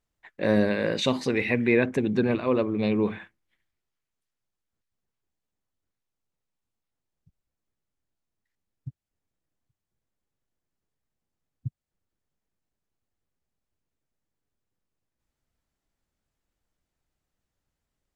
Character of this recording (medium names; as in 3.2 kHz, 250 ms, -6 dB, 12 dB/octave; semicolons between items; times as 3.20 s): noise floor -86 dBFS; spectral tilt -5.0 dB/octave